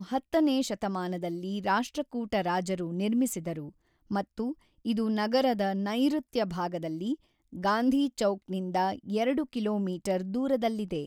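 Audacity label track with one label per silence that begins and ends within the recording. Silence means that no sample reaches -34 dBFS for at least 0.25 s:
3.660000	4.110000	silence
4.520000	4.860000	silence
7.140000	7.550000	silence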